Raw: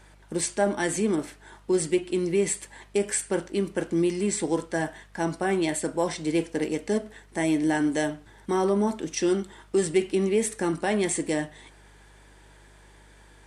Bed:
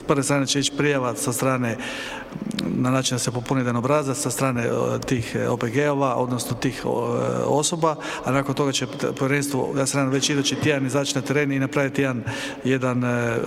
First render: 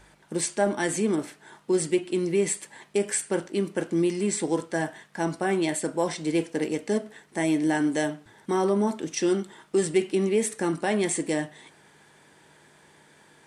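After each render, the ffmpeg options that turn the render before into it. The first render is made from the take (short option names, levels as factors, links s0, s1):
-af "bandreject=f=50:t=h:w=4,bandreject=f=100:t=h:w=4"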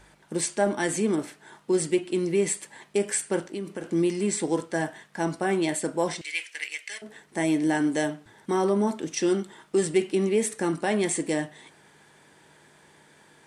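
-filter_complex "[0:a]asettb=1/sr,asplit=3[s0][s1][s2];[s0]atrim=end=3.444[s3];[s1]atrim=start=3.44:end=3.84,asetpts=PTS-STARTPTS,afade=t=in:d=0.004:c=qsin,afade=t=out:st=0.396:d=0.004:c=qsin,acompressor=threshold=0.0282:ratio=3:attack=3.2:release=140:knee=1:detection=peak[s4];[s2]atrim=start=3.836[s5];[s3][s4]acrossfade=d=0.004:c1=hsin:c2=qsin[s6];[s6][s5]acrossfade=d=0.004:c1=qsin:c2=hsin,asettb=1/sr,asplit=3[s7][s8][s9];[s7]atrim=end=6.214[s10];[s8]atrim=start=6.21:end=7.02,asetpts=PTS-STARTPTS,afade=t=in:d=0.004:c=qsin,afade=t=out:st=0.806:d=0.004:c=qsin,highpass=f=2200:t=q:w=3[s11];[s9]atrim=start=7.016[s12];[s10][s11]acrossfade=d=0.004:c1=hsin:c2=qsin[s13];[s13][s12]acrossfade=d=0.004:c1=qsin:c2=hsin"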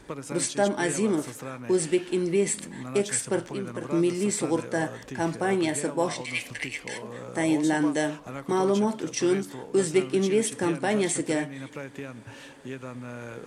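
-filter_complex "[1:a]volume=0.15[s0];[0:a][s0]amix=inputs=2:normalize=0"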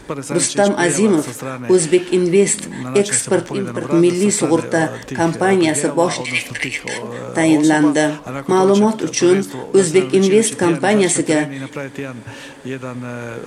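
-af "volume=3.55,alimiter=limit=0.794:level=0:latency=1"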